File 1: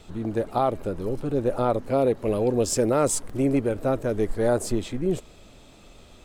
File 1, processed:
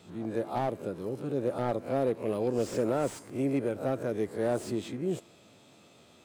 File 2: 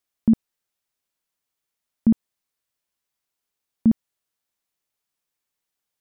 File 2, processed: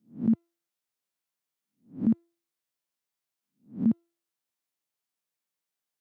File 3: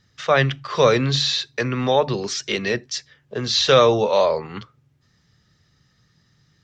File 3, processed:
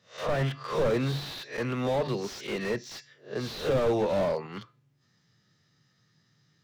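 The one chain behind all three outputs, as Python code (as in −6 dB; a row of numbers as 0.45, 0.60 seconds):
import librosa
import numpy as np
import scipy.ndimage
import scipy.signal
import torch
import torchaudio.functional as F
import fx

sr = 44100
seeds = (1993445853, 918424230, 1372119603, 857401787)

y = fx.spec_swells(x, sr, rise_s=0.31)
y = scipy.signal.sosfilt(scipy.signal.butter(4, 110.0, 'highpass', fs=sr, output='sos'), y)
y = fx.comb_fb(y, sr, f0_hz=340.0, decay_s=0.45, harmonics='all', damping=0.0, mix_pct=40)
y = fx.slew_limit(y, sr, full_power_hz=53.0)
y = y * librosa.db_to_amplitude(-2.5)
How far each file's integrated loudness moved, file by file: −7.0, −6.0, −10.0 LU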